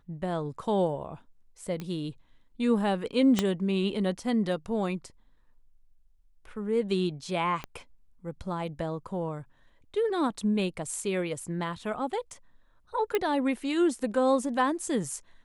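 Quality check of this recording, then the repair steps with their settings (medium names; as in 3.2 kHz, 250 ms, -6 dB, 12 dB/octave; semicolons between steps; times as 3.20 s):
1.80 s: pop -23 dBFS
3.39 s: pop -10 dBFS
7.64 s: pop -21 dBFS
13.15 s: pop -14 dBFS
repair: de-click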